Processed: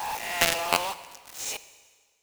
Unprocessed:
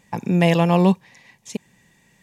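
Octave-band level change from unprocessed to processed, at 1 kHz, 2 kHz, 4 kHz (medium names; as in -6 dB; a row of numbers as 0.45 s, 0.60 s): -3.5 dB, +1.0 dB, +4.0 dB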